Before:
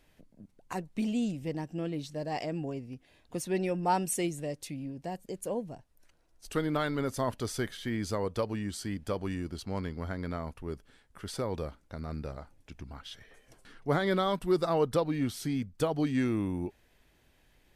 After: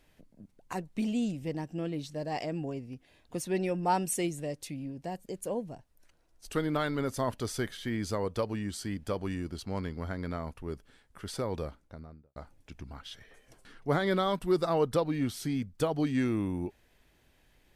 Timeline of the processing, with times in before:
11.62–12.36 studio fade out

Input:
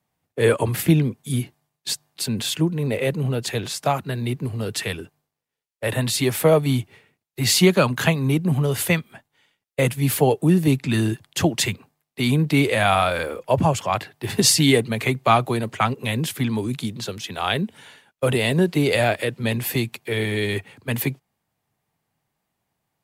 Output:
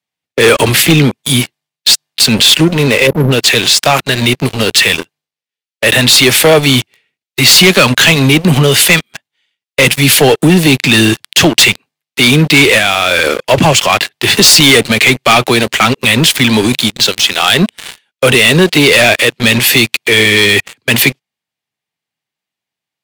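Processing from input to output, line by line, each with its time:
3.07–3.31 spectral delete 630–11000 Hz
12.78–13.36 compressor, threshold -22 dBFS
whole clip: weighting filter D; sample leveller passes 5; limiter -1.5 dBFS

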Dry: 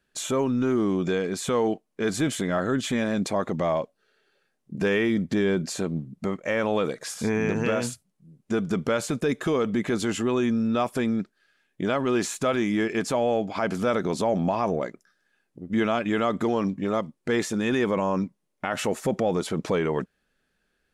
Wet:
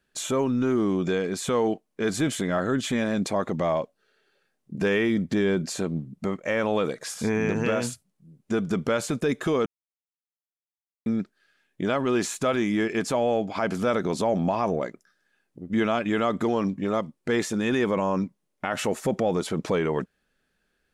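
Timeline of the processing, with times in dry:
9.66–11.06 mute

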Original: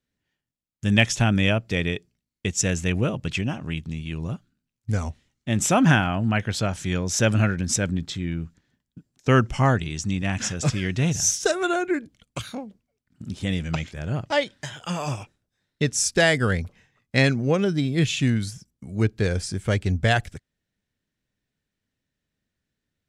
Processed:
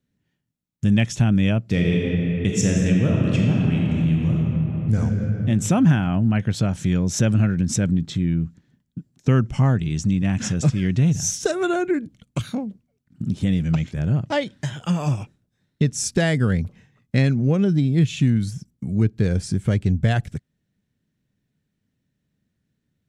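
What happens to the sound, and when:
1.69–4.97 reverb throw, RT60 2.9 s, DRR -2.5 dB
whole clip: bell 160 Hz +12.5 dB 2.2 oct; notch 4900 Hz, Q 28; compressor 2:1, threshold -20 dBFS

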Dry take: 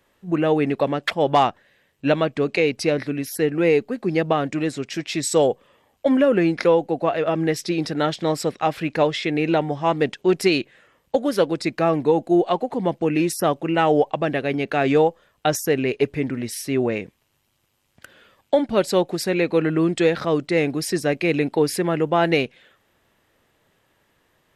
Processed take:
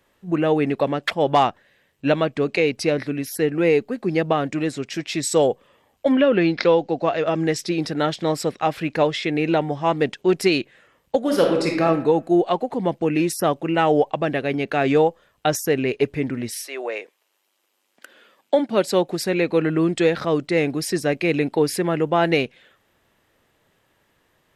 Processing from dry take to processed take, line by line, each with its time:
6.12–7.57 synth low-pass 3200 Hz -> 7900 Hz, resonance Q 2.2
11.19–11.83 reverb throw, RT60 0.84 s, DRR 0.5 dB
16.51–19.07 HPF 590 Hz -> 140 Hz 24 dB/oct

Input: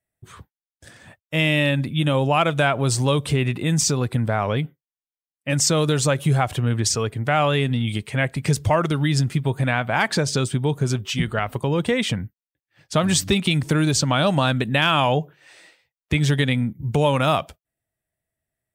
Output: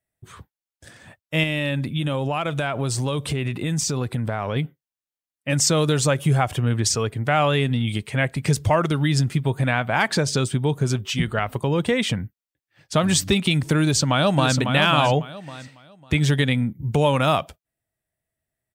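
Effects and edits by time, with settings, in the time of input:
1.43–4.56 compressor, threshold -20 dBFS
6.09–6.66 notch 4000 Hz, Q 9.7
13.83–14.57 echo throw 0.55 s, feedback 25%, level -6 dB

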